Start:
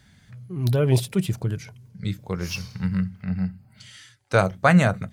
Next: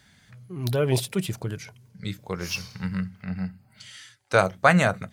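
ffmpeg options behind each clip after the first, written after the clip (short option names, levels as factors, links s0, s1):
-af "lowshelf=f=260:g=-9,volume=1.19"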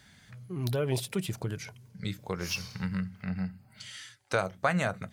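-af "acompressor=threshold=0.0282:ratio=2"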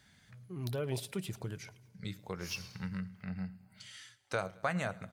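-af "aecho=1:1:109|218|327|436:0.075|0.0405|0.0219|0.0118,volume=0.473"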